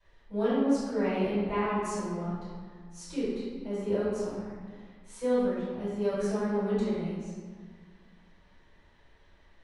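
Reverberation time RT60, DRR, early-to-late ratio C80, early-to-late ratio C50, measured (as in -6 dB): 1.7 s, -14.5 dB, 0.0 dB, -2.5 dB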